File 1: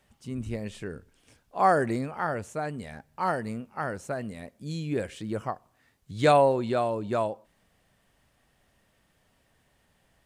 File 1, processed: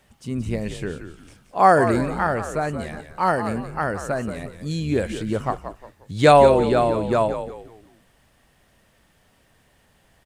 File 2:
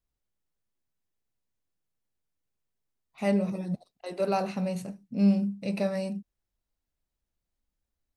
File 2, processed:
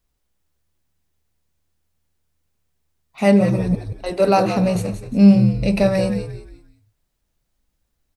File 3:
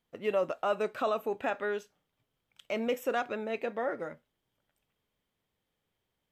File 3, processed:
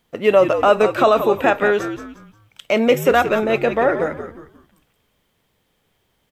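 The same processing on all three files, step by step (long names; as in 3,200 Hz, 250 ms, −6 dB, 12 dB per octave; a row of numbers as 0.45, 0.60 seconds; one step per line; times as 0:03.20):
on a send: echo with shifted repeats 177 ms, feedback 34%, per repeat −76 Hz, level −9.5 dB
on the sum: normalise the peak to −1.5 dBFS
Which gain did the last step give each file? +7.0, +11.5, +16.0 decibels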